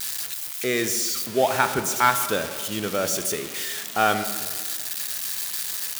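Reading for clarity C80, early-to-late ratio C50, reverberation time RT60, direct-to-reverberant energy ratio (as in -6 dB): 11.0 dB, 10.0 dB, 1.7 s, 9.0 dB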